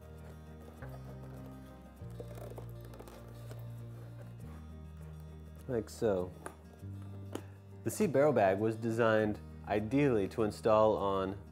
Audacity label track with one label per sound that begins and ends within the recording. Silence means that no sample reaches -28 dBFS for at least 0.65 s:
5.710000	6.460000	sound